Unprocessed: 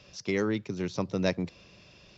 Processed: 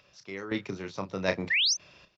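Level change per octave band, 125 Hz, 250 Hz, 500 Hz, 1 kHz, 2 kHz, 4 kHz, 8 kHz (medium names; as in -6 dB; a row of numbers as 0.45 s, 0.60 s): -6.0 dB, -5.0 dB, -3.0 dB, +0.5 dB, +7.5 dB, +14.0 dB, no reading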